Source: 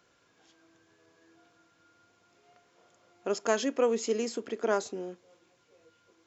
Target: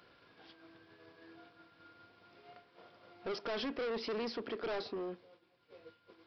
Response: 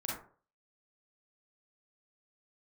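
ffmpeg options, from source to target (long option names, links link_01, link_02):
-af "agate=range=-33dB:threshold=-54dB:ratio=3:detection=peak,acompressor=mode=upward:threshold=-46dB:ratio=2.5,aresample=11025,asoftclip=type=tanh:threshold=-37dB,aresample=44100,volume=2dB"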